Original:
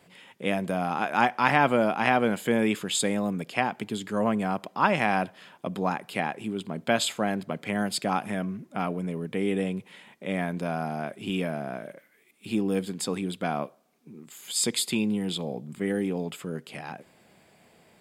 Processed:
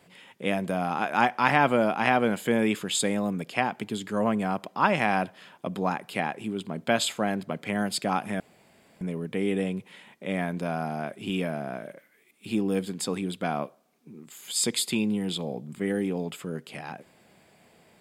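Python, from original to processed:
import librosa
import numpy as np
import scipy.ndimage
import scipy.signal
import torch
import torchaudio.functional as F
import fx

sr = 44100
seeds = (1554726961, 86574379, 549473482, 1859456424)

y = fx.edit(x, sr, fx.room_tone_fill(start_s=8.4, length_s=0.61), tone=tone)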